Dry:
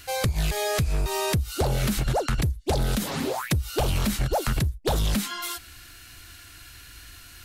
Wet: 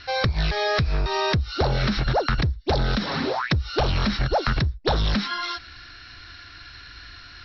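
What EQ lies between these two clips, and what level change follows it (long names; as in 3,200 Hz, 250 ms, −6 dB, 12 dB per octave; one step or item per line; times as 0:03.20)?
Chebyshev low-pass with heavy ripple 5,600 Hz, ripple 6 dB
+7.5 dB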